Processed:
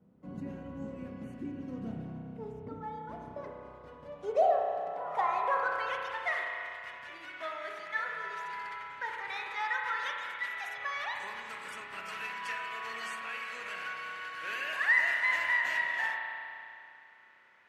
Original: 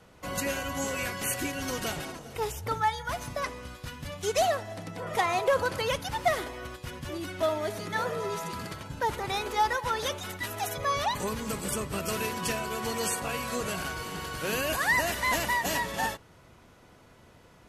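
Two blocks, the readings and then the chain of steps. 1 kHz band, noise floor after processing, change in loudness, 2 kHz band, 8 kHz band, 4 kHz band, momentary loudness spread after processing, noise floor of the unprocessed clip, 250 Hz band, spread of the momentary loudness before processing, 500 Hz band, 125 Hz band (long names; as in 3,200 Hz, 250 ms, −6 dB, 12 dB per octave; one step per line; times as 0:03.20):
−4.5 dB, −56 dBFS, −3.5 dB, +0.5 dB, −21.5 dB, −9.5 dB, 16 LU, −56 dBFS, −7.5 dB, 11 LU, −6.5 dB, −11.5 dB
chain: band-pass filter sweep 210 Hz → 1,900 Hz, 0:02.45–0:06.33
spring reverb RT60 2.6 s, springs 31 ms, chirp 35 ms, DRR 0.5 dB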